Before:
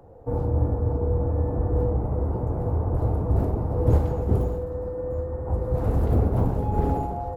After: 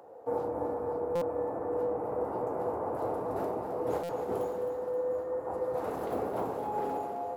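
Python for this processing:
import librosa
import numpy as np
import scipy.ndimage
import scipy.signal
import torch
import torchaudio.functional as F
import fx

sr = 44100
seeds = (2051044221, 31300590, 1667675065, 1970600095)

y = scipy.signal.sosfilt(scipy.signal.butter(2, 480.0, 'highpass', fs=sr, output='sos'), x)
y = fx.rider(y, sr, range_db=10, speed_s=0.5)
y = fx.echo_feedback(y, sr, ms=264, feedback_pct=56, wet_db=-9.5)
y = fx.buffer_glitch(y, sr, at_s=(1.15, 4.03), block=256, repeats=10)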